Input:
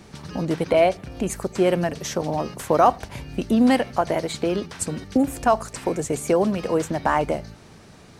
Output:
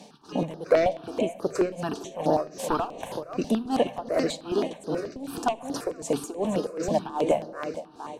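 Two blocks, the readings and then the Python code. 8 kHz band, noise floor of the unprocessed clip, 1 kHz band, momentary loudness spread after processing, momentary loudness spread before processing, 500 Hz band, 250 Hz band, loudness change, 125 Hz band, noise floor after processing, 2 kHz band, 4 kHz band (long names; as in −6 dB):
−7.5 dB, −47 dBFS, −7.0 dB, 8 LU, 11 LU, −3.5 dB, −6.5 dB, −5.5 dB, −8.0 dB, −48 dBFS, −7.5 dB, −4.5 dB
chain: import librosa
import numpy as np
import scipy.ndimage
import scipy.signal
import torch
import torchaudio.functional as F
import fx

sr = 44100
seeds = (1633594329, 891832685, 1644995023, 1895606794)

y = scipy.signal.sosfilt(scipy.signal.butter(2, 270.0, 'highpass', fs=sr, output='sos'), x)
y = fx.echo_feedback(y, sr, ms=469, feedback_pct=31, wet_db=-10.5)
y = fx.fold_sine(y, sr, drive_db=9, ceiling_db=-2.0)
y = fx.peak_eq(y, sr, hz=2000.0, db=-8.0, octaves=0.49)
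y = y * (1.0 - 0.94 / 2.0 + 0.94 / 2.0 * np.cos(2.0 * np.pi * 2.6 * (np.arange(len(y)) / sr)))
y = fx.high_shelf(y, sr, hz=8000.0, db=-9.5)
y = fx.room_shoebox(y, sr, seeds[0], volume_m3=3600.0, walls='mixed', distance_m=0.37)
y = fx.phaser_held(y, sr, hz=9.3, low_hz=360.0, high_hz=7800.0)
y = y * 10.0 ** (-6.5 / 20.0)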